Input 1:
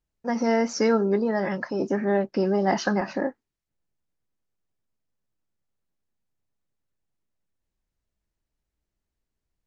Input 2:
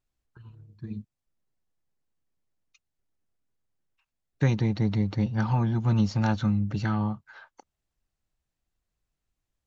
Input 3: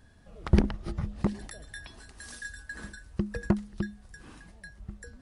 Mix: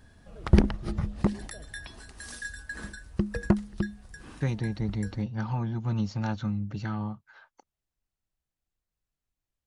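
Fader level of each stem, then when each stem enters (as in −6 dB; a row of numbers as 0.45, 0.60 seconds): muted, −5.5 dB, +2.5 dB; muted, 0.00 s, 0.00 s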